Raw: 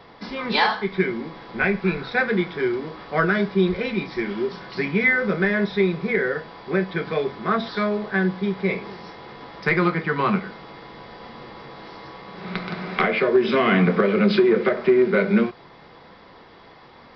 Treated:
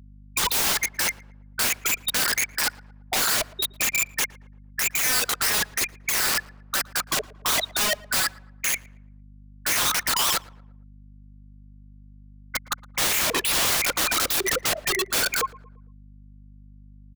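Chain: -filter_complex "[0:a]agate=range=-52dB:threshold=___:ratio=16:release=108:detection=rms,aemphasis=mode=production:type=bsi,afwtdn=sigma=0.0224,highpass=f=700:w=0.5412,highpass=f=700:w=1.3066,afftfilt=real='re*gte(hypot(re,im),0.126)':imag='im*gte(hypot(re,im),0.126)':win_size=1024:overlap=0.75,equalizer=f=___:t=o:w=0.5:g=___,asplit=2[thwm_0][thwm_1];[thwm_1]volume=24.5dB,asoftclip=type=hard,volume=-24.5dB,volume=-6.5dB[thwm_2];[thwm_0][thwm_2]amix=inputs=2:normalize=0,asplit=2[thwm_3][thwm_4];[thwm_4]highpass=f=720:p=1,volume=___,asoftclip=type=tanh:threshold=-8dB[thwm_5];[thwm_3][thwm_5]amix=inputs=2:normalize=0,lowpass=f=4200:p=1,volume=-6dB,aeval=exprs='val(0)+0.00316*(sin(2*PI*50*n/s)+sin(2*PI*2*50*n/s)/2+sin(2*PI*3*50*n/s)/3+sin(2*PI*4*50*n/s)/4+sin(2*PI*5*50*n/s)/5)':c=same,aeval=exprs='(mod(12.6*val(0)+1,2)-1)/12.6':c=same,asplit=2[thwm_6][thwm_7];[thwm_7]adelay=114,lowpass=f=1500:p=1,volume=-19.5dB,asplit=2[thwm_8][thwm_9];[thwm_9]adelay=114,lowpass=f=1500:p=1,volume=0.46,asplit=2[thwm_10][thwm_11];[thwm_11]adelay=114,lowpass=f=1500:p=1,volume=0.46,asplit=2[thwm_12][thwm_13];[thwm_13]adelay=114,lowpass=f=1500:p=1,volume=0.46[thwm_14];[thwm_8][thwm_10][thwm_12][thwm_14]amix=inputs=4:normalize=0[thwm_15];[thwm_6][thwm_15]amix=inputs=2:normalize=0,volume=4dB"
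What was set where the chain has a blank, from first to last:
-34dB, 2100, -7.5, 21dB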